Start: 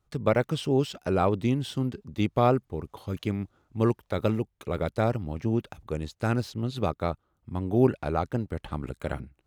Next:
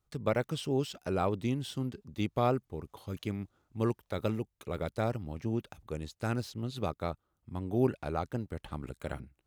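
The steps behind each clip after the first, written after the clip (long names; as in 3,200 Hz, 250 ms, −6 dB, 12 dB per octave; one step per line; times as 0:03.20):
high-shelf EQ 4,300 Hz +5.5 dB
level −6.5 dB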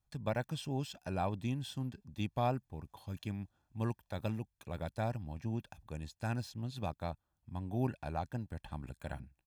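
comb filter 1.2 ms, depth 57%
level −5.5 dB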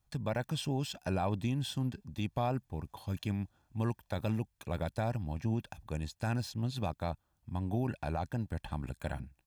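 brickwall limiter −30 dBFS, peak gain reduction 8.5 dB
level +6 dB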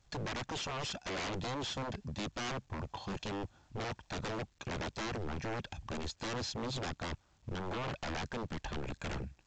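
wave folding −39 dBFS
level +6 dB
A-law companding 128 kbit/s 16,000 Hz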